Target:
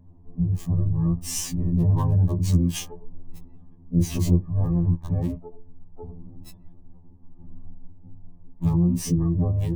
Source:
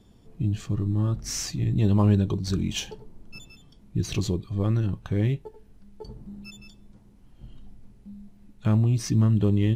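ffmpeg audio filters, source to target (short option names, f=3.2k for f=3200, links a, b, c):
-filter_complex "[0:a]asplit=4[a][b][c][d];[b]asetrate=22050,aresample=44100,atempo=2,volume=-10dB[e];[c]asetrate=33038,aresample=44100,atempo=1.33484,volume=-17dB[f];[d]asetrate=66075,aresample=44100,atempo=0.66742,volume=-8dB[g];[a][e][f][g]amix=inputs=4:normalize=0,asplit=2[h][i];[i]alimiter=limit=-16.5dB:level=0:latency=1:release=17,volume=2dB[j];[h][j]amix=inputs=2:normalize=0,equalizer=f=500:t=o:w=1:g=-10,equalizer=f=2k:t=o:w=1:g=-8,equalizer=f=4k:t=o:w=1:g=-10,acrossover=split=1500[k][l];[l]acrusher=bits=5:mix=0:aa=0.000001[m];[k][m]amix=inputs=2:normalize=0,asuperstop=centerf=1400:order=4:qfactor=3.4,afftfilt=real='re*2*eq(mod(b,4),0)':imag='im*2*eq(mod(b,4),0)':win_size=2048:overlap=0.75"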